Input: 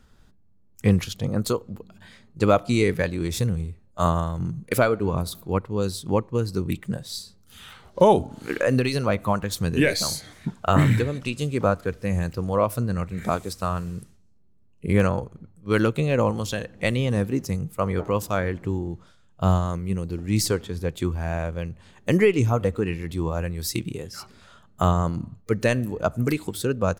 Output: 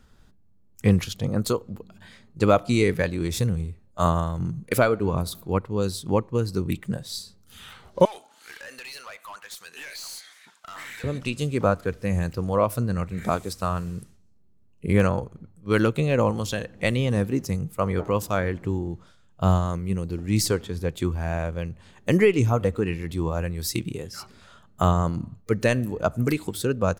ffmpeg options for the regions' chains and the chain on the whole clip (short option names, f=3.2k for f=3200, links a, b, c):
-filter_complex "[0:a]asettb=1/sr,asplit=3[a][b][c];[a]atrim=end=8.054[d];[b]atrim=start=8.05:end=11.04,asetpts=PTS-STARTPTS,afade=t=in:d=0.004:c=qsin,afade=t=out:st=2.986:d=0.004:c=qsin,highpass=1.4k,acompressor=threshold=-28dB:ratio=4:attack=3.2:release=140:knee=1:detection=peak,aeval=exprs='(tanh(56.2*val(0)+0.1)-tanh(0.1))/56.2':c=same[e];[c]atrim=start=11.036[f];[d][e]acrossfade=d=0.004:c1=hsin:c2=qsin[g];[g][f]acrossfade=d=0.004:c1=qsin:c2=hsin"